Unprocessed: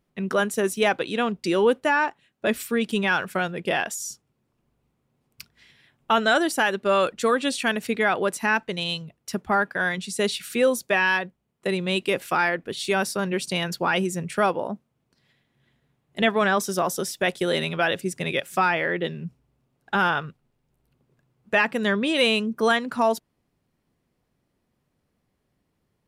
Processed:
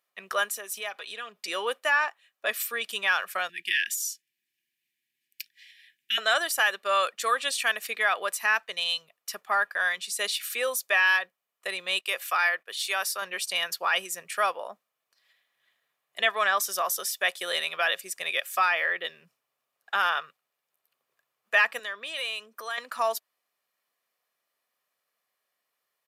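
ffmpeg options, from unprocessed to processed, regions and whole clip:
ffmpeg -i in.wav -filter_complex "[0:a]asettb=1/sr,asplit=3[link_01][link_02][link_03];[link_01]atrim=end=0.514[link_04];[link_02]atrim=start=0.51:end=1.48,asetpts=PTS-STARTPTS,afade=type=in:duration=0.004:curve=qsin,afade=type=out:start_time=0.966:duration=0.004:curve=qsin,acompressor=threshold=-31dB:ratio=4:attack=3.2:release=140:knee=1:detection=peak,aecho=1:1:4.8:0.58,atrim=end_sample=42777[link_05];[link_03]atrim=start=1.476[link_06];[link_04][link_05]acrossfade=duration=0.004:curve1=hsin:curve2=qsin[link_07];[link_07][link_06]acrossfade=duration=0.004:curve1=qsin:curve2=hsin,asettb=1/sr,asplit=3[link_08][link_09][link_10];[link_08]atrim=end=3.494[link_11];[link_09]atrim=start=3.49:end=6.18,asetpts=PTS-STARTPTS,afade=type=in:duration=0.004:curve=qsin,afade=type=out:start_time=2.686:duration=0.004:curve=qsin,asuperstop=centerf=780:order=20:qfactor=0.62,equalizer=frequency=2700:width=1.3:gain=4[link_12];[link_10]atrim=start=6.176[link_13];[link_11][link_12]acrossfade=duration=0.004:curve1=hsin:curve2=qsin[link_14];[link_14][link_13]acrossfade=duration=0.004:curve1=qsin:curve2=hsin,asettb=1/sr,asplit=3[link_15][link_16][link_17];[link_15]atrim=end=11.994[link_18];[link_16]atrim=start=11.99:end=13.22,asetpts=PTS-STARTPTS,afade=type=in:duration=0.004:curve=qsin,afade=type=out:start_time=1.226:duration=0.004:curve=qsin,highpass=frequency=460:poles=1,agate=range=-14dB:threshold=-48dB:ratio=16:release=100:detection=peak[link_19];[link_17]atrim=start=13.216[link_20];[link_18][link_19]acrossfade=duration=0.004:curve1=hsin:curve2=qsin[link_21];[link_21][link_20]acrossfade=duration=0.004:curve1=qsin:curve2=hsin,asettb=1/sr,asplit=3[link_22][link_23][link_24];[link_22]atrim=end=21.794[link_25];[link_23]atrim=start=21.79:end=22.78,asetpts=PTS-STARTPTS,afade=type=in:duration=0.004:curve=qsin,afade=type=out:start_time=0.986:duration=0.004:curve=qsin,highpass=230,acompressor=threshold=-31dB:ratio=2.5:attack=3.2:release=140:knee=1:detection=peak[link_26];[link_24]atrim=start=22.776[link_27];[link_25][link_26]acrossfade=duration=0.004:curve1=hsin:curve2=qsin[link_28];[link_28][link_27]acrossfade=duration=0.004:curve1=qsin:curve2=hsin,highpass=1000,equalizer=frequency=13000:width_type=o:width=0.32:gain=8.5,aecho=1:1:1.7:0.35" out.wav

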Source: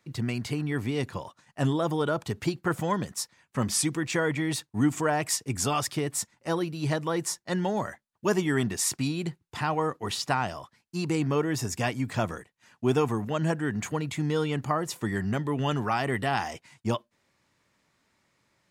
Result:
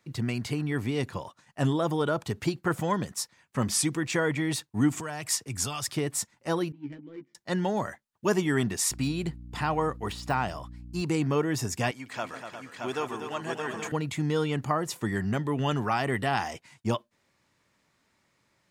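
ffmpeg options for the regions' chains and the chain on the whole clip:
ffmpeg -i in.wav -filter_complex "[0:a]asettb=1/sr,asplit=3[link_01][link_02][link_03];[link_01]atrim=end=5.004[link_04];[link_02]atrim=start=5:end=5.92,asetpts=PTS-STARTPTS,afade=type=in:duration=0.004:curve=qsin,afade=type=out:start_time=0.916:duration=0.004:curve=qsin,equalizer=frequency=1300:width_type=o:width=1.7:gain=4,acrossover=split=120|3000[link_05][link_06][link_07];[link_06]acompressor=threshold=-44dB:ratio=2:attack=3.2:release=140:knee=2.83:detection=peak[link_08];[link_05][link_08][link_07]amix=inputs=3:normalize=0[link_09];[link_03]atrim=start=5.916[link_10];[link_04][link_09]acrossfade=duration=0.004:curve1=hsin:curve2=qsin[link_11];[link_11][link_10]acrossfade=duration=0.004:curve1=qsin:curve2=hsin,asettb=1/sr,asplit=3[link_12][link_13][link_14];[link_12]atrim=end=6.724[link_15];[link_13]atrim=start=6.72:end=7.35,asetpts=PTS-STARTPTS,afade=type=in:duration=0.004:curve=qsin,afade=type=out:start_time=0.626:duration=0.004:curve=qsin,asplit=3[link_16][link_17][link_18];[link_16]bandpass=frequency=270:width_type=q:width=8,volume=0dB[link_19];[link_17]bandpass=frequency=2290:width_type=q:width=8,volume=-6dB[link_20];[link_18]bandpass=frequency=3010:width_type=q:width=8,volume=-9dB[link_21];[link_19][link_20][link_21]amix=inputs=3:normalize=0,adynamicsmooth=sensitivity=7.5:basefreq=730,asplit=2[link_22][link_23];[link_23]adelay=14,volume=-4.5dB[link_24];[link_22][link_24]amix=inputs=2:normalize=0,atrim=end_sample=27783[link_25];[link_14]atrim=start=7.346[link_26];[link_15][link_25]acrossfade=duration=0.004:curve1=hsin:curve2=qsin[link_27];[link_27][link_26]acrossfade=duration=0.004:curve1=qsin:curve2=hsin,asettb=1/sr,asplit=3[link_28][link_29][link_30];[link_28]atrim=end=8.914[link_31];[link_29]atrim=start=8.91:end=11.02,asetpts=PTS-STARTPTS,afade=type=in:duration=0.004:curve=qsin,afade=type=out:start_time=2.106:duration=0.004:curve=qsin,bandreject=frequency=6000:width=15,deesser=0.9,aeval=exprs='val(0)+0.00794*(sin(2*PI*60*n/s)+sin(2*PI*2*60*n/s)/2+sin(2*PI*3*60*n/s)/3+sin(2*PI*4*60*n/s)/4+sin(2*PI*5*60*n/s)/5)':channel_layout=same[link_32];[link_30]atrim=start=11.016[link_33];[link_31][link_32]acrossfade=duration=0.004:curve1=hsin:curve2=qsin[link_34];[link_34][link_33]acrossfade=duration=0.004:curve1=qsin:curve2=hsin,asettb=1/sr,asplit=3[link_35][link_36][link_37];[link_35]atrim=end=11.914[link_38];[link_36]atrim=start=11.91:end=13.92,asetpts=PTS-STARTPTS,afade=type=in:duration=0.004:curve=qsin,afade=type=out:start_time=2.006:duration=0.004:curve=qsin,highpass=frequency=990:poles=1,highshelf=frequency=6800:gain=-7,aecho=1:1:148|243|355|623|823:0.211|0.376|0.316|0.596|0.335,atrim=end_sample=88641[link_39];[link_37]atrim=start=13.916[link_40];[link_38][link_39]acrossfade=duration=0.004:curve1=hsin:curve2=qsin[link_41];[link_41][link_40]acrossfade=duration=0.004:curve1=qsin:curve2=hsin" out.wav

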